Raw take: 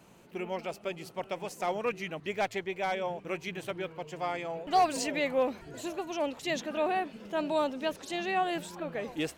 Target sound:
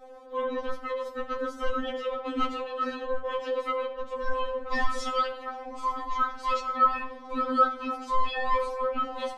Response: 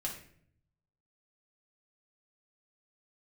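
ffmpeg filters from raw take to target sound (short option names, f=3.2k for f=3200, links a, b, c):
-filter_complex "[0:a]aemphasis=mode=reproduction:type=bsi,aeval=exprs='val(0)*sin(2*PI*690*n/s)':c=same,asplit=2[a][b];[1:a]atrim=start_sample=2205,afade=t=out:st=0.21:d=0.01,atrim=end_sample=9702,asetrate=31311,aresample=44100[c];[b][c]afir=irnorm=-1:irlink=0,volume=-5dB[d];[a][d]amix=inputs=2:normalize=0,afftfilt=real='re*3.46*eq(mod(b,12),0)':imag='im*3.46*eq(mod(b,12),0)':win_size=2048:overlap=0.75,volume=2.5dB"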